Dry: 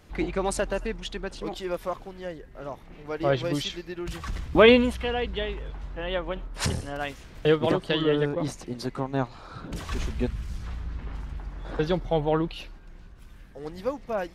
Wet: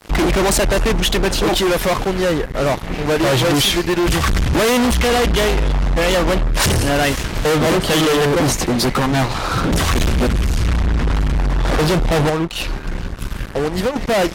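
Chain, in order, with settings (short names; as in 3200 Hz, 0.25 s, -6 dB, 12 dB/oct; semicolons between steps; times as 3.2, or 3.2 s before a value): 12.29–13.96 compressor 12:1, threshold -38 dBFS, peak gain reduction 19 dB; fuzz box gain 41 dB, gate -50 dBFS; MP3 80 kbps 48000 Hz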